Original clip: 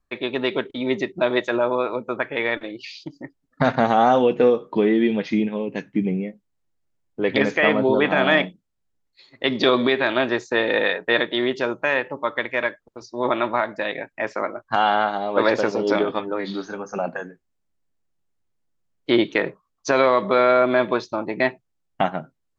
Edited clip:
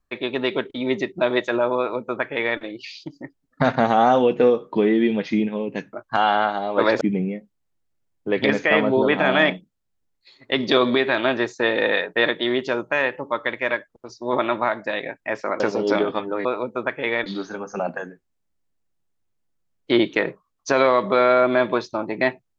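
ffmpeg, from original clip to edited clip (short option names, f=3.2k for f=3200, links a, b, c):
-filter_complex "[0:a]asplit=6[a][b][c][d][e][f];[a]atrim=end=5.932[g];[b]atrim=start=14.518:end=15.602[h];[c]atrim=start=5.928:end=14.522[i];[d]atrim=start=15.598:end=16.452[j];[e]atrim=start=1.778:end=2.592[k];[f]atrim=start=16.448[l];[g][h]acrossfade=d=0.004:c1=hsin:c2=hsin[m];[m][i]acrossfade=d=0.004:c1=hsin:c2=hsin[n];[n][j]acrossfade=d=0.004:c1=hsin:c2=hsin[o];[o][k]acrossfade=d=0.004:c1=hsin:c2=hsin[p];[p][l]acrossfade=d=0.004:c1=hsin:c2=hsin"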